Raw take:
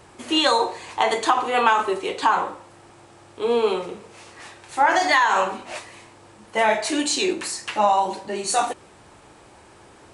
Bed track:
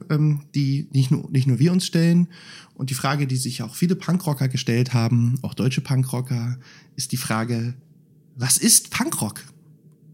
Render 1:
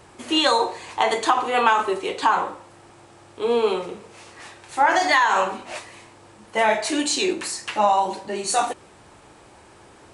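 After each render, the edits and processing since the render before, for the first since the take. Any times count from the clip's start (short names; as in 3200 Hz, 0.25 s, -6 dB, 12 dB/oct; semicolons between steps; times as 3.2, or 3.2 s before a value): nothing audible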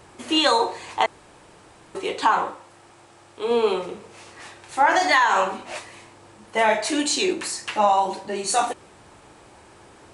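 1.06–1.95 room tone; 2.5–3.51 low shelf 470 Hz -5.5 dB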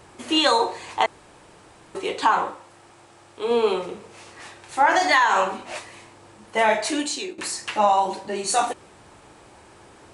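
6.86–7.38 fade out, to -18.5 dB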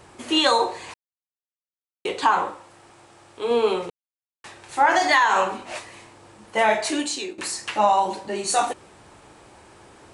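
0.94–2.05 mute; 3.9–4.44 mute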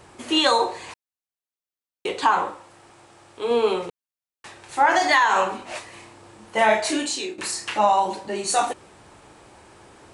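5.9–7.79 doubler 32 ms -6 dB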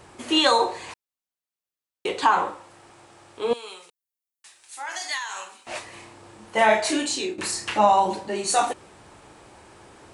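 3.53–5.67 pre-emphasis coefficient 0.97; 7.1–8.24 low shelf 300 Hz +6.5 dB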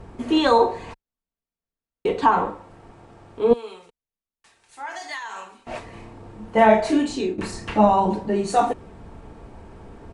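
tilt -4 dB/oct; comb 4.4 ms, depth 36%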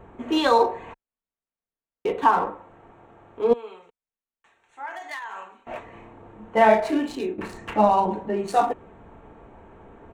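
Wiener smoothing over 9 samples; low shelf 250 Hz -9.5 dB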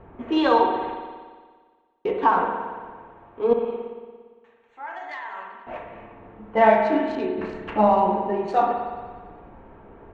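air absorption 190 m; spring tank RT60 1.6 s, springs 57 ms, chirp 40 ms, DRR 3.5 dB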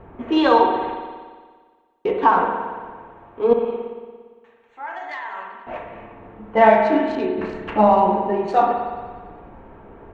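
gain +3.5 dB; limiter -2 dBFS, peak gain reduction 1 dB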